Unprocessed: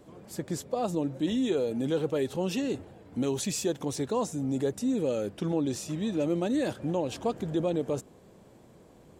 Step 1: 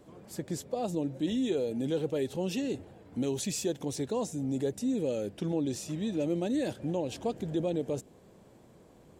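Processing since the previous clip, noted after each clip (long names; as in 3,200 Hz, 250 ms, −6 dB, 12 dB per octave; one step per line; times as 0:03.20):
dynamic equaliser 1,200 Hz, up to −8 dB, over −52 dBFS, Q 1.8
level −2 dB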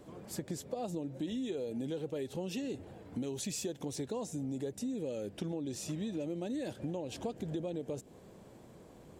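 downward compressor, threshold −37 dBFS, peak gain reduction 11 dB
level +2 dB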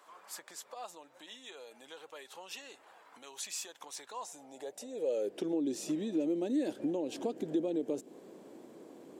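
high-pass filter sweep 1,100 Hz → 300 Hz, 0:04.10–0:05.66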